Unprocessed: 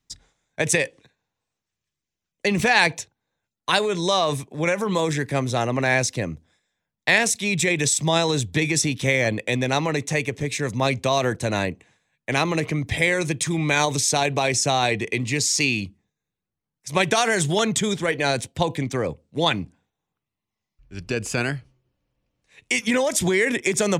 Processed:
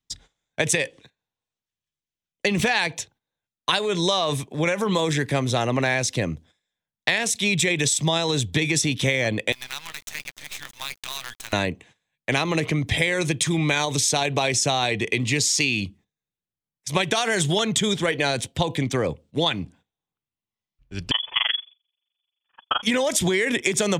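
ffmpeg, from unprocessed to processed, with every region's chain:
ffmpeg -i in.wav -filter_complex "[0:a]asettb=1/sr,asplit=3[link_01][link_02][link_03];[link_01]atrim=end=9.524[link_04];[link_02]atrim=start=9.52:end=11.53,asetpts=PTS-STARTPTS,afade=type=in:duration=0.004:curve=qsin,afade=type=out:start_time=2.006:duration=0.004:curve=qsin,highpass=frequency=1100:width=0.5412,highpass=frequency=1100:width=1.3066,acompressor=threshold=-38dB:ratio=2.5:attack=3.2:release=140:knee=1:detection=peak,acrusher=bits=6:dc=4:mix=0:aa=0.000001[link_05];[link_03]atrim=start=11.526[link_06];[link_04][link_05]acrossfade=duration=0.004:curve1=hsin:curve2=qsin[link_07];[link_07][link_06]acrossfade=duration=0.004:curve1=qsin:curve2=hsin,asettb=1/sr,asplit=3[link_08][link_09][link_10];[link_08]atrim=end=21.114[link_11];[link_09]atrim=start=21.11:end=22.83,asetpts=PTS-STARTPTS,afade=type=in:duration=0.004:curve=qsin,afade=type=out:start_time=1.716:duration=0.004:curve=qsin,equalizer=frequency=970:width=1.8:gain=11,tremolo=f=23:d=1,lowpass=frequency=3000:width_type=q:width=0.5098,lowpass=frequency=3000:width_type=q:width=0.6013,lowpass=frequency=3000:width_type=q:width=0.9,lowpass=frequency=3000:width_type=q:width=2.563,afreqshift=-3500[link_12];[link_10]atrim=start=22.826[link_13];[link_11][link_12]acrossfade=duration=0.004:curve1=hsin:curve2=qsin[link_14];[link_14][link_13]acrossfade=duration=0.004:curve1=qsin:curve2=hsin,agate=range=-12dB:threshold=-51dB:ratio=16:detection=peak,equalizer=frequency=3300:width=2.9:gain=6,acompressor=threshold=-21dB:ratio=6,volume=3dB" out.wav

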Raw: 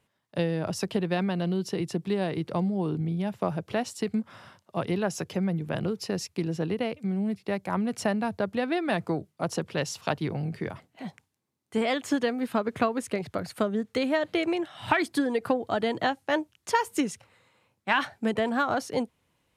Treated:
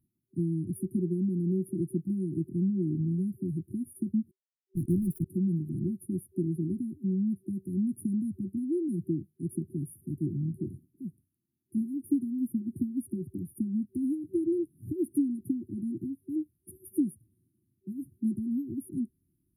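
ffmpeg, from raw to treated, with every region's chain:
ffmpeg -i in.wav -filter_complex "[0:a]asettb=1/sr,asplit=3[link_01][link_02][link_03];[link_01]atrim=end=4.314[link_04];[link_02]atrim=start=4.31:end=5.26,asetpts=PTS-STARTPTS,afade=type=in:duration=0.004:curve=qsin,afade=type=out:start_time=0.946:duration=0.004:curve=qsin,highpass=47,asubboost=boost=11:cutoff=180,acrusher=bits=4:mix=0:aa=0.5[link_05];[link_03]atrim=start=5.256[link_06];[link_04][link_05]acrossfade=duration=0.004:curve1=hsin:curve2=qsin[link_07];[link_07][link_06]acrossfade=duration=0.004:curve1=qsin:curve2=hsin,deesser=0.55,afftfilt=real='re*(1-between(b*sr/4096,380,9400))':imag='im*(1-between(b*sr/4096,380,9400))':win_size=4096:overlap=0.75" out.wav

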